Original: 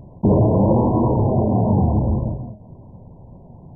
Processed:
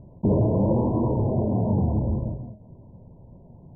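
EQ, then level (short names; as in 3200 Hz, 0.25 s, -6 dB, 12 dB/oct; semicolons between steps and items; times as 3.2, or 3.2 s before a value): LPF 1000 Hz 24 dB/oct; bell 770 Hz -6.5 dB 0.23 oct; -5.5 dB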